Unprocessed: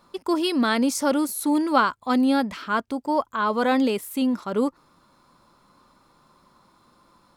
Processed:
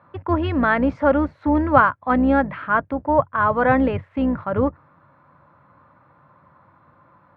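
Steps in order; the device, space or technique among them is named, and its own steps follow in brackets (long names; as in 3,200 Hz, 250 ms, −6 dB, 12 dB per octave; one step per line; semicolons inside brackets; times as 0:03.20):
sub-octave bass pedal (sub-octave generator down 2 octaves, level −4 dB; loudspeaker in its box 88–2,100 Hz, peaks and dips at 95 Hz +9 dB, 140 Hz +6 dB, 220 Hz −7 dB, 390 Hz −9 dB, 580 Hz +4 dB, 1,700 Hz +4 dB)
level +4.5 dB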